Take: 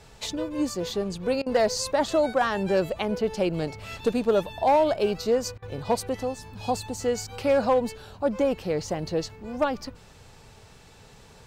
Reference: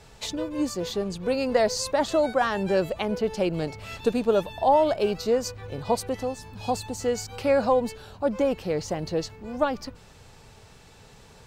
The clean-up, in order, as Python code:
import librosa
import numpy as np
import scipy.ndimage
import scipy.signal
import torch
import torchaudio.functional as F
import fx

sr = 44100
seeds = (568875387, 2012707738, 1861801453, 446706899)

y = fx.fix_declip(x, sr, threshold_db=-14.5)
y = fx.fix_interpolate(y, sr, at_s=(1.42, 5.58), length_ms=42.0)